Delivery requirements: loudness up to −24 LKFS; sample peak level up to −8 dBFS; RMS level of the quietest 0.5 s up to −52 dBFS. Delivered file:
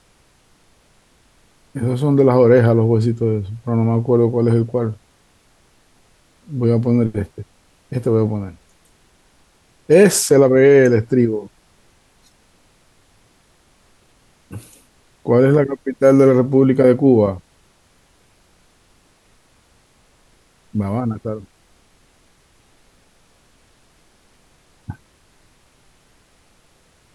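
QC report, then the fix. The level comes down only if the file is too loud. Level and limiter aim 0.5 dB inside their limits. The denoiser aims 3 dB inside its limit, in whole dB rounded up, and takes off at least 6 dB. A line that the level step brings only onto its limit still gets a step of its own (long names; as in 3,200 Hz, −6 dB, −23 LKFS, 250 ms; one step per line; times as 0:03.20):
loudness −15.5 LKFS: out of spec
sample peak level −2.0 dBFS: out of spec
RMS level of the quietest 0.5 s −56 dBFS: in spec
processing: level −9 dB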